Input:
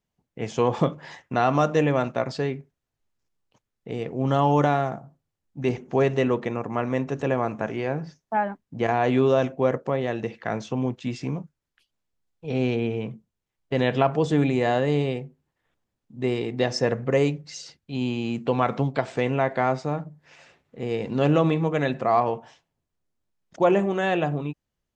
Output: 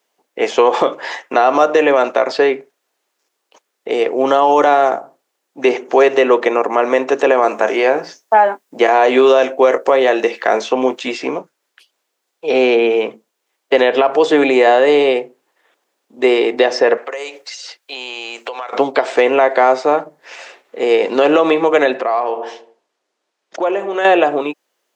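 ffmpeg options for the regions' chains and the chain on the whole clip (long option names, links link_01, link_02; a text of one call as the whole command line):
ffmpeg -i in.wav -filter_complex "[0:a]asettb=1/sr,asplit=3[link_01][link_02][link_03];[link_01]atrim=end=7.424[link_04];[link_02]atrim=start=7.42:end=11.12,asetpts=PTS-STARTPTS,afade=type=in:duration=0.004:curve=qsin,afade=type=out:start_time=3.696:duration=0.004:curve=qsin,highshelf=frequency=6800:gain=9,asplit=2[link_05][link_06];[link_06]adelay=23,volume=-13dB[link_07];[link_05][link_07]amix=inputs=2:normalize=0,atrim=end_sample=163170[link_08];[link_03]atrim=start=11.116[link_09];[link_04][link_08]acrossfade=duration=0.004:curve1=hsin:curve2=qsin[link_10];[link_10][link_09]acrossfade=duration=0.004:curve1=qsin:curve2=hsin,asettb=1/sr,asplit=3[link_11][link_12][link_13];[link_11]atrim=end=16.974[link_14];[link_12]atrim=start=16.97:end=18.73,asetpts=PTS-STARTPTS,afade=type=in:duration=0.004:curve=qsin,afade=type=out:start_time=1.756:duration=0.004:curve=qsin,highpass=620,highshelf=frequency=4100:gain=7,acompressor=threshold=-38dB:ratio=20:attack=3.2:release=140:knee=1:detection=peak[link_15];[link_13]atrim=start=18.726[link_16];[link_14][link_15]acrossfade=duration=0.004:curve1=hsin:curve2=qsin[link_17];[link_17][link_16]acrossfade=duration=0.004:curve1=qsin:curve2=hsin,asettb=1/sr,asplit=3[link_18][link_19][link_20];[link_18]atrim=end=21.984[link_21];[link_19]atrim=start=21.98:end=24.05,asetpts=PTS-STARTPTS,afade=type=in:duration=0.004:curve=qsin,afade=type=out:start_time=2.066:duration=0.004:curve=qsin,lowpass=6400,asplit=2[link_22][link_23];[link_23]adelay=77,lowpass=frequency=1000:poles=1,volume=-13.5dB,asplit=2[link_24][link_25];[link_25]adelay=77,lowpass=frequency=1000:poles=1,volume=0.53,asplit=2[link_26][link_27];[link_27]adelay=77,lowpass=frequency=1000:poles=1,volume=0.53,asplit=2[link_28][link_29];[link_29]adelay=77,lowpass=frequency=1000:poles=1,volume=0.53,asplit=2[link_30][link_31];[link_31]adelay=77,lowpass=frequency=1000:poles=1,volume=0.53[link_32];[link_22][link_24][link_26][link_28][link_30][link_32]amix=inputs=6:normalize=0,atrim=end_sample=91287,acompressor=threshold=-32dB:ratio=4:attack=3.2:release=140:knee=1:detection=peak[link_33];[link_20]atrim=start=24.046[link_34];[link_21][link_33]acrossfade=duration=0.004:curve1=hsin:curve2=qsin[link_35];[link_35][link_34]acrossfade=duration=0.004:curve1=qsin:curve2=hsin,highpass=frequency=370:width=0.5412,highpass=frequency=370:width=1.3066,acrossover=split=970|3900[link_36][link_37][link_38];[link_36]acompressor=threshold=-25dB:ratio=4[link_39];[link_37]acompressor=threshold=-34dB:ratio=4[link_40];[link_38]acompressor=threshold=-55dB:ratio=4[link_41];[link_39][link_40][link_41]amix=inputs=3:normalize=0,alimiter=level_in=18.5dB:limit=-1dB:release=50:level=0:latency=1,volume=-1dB" out.wav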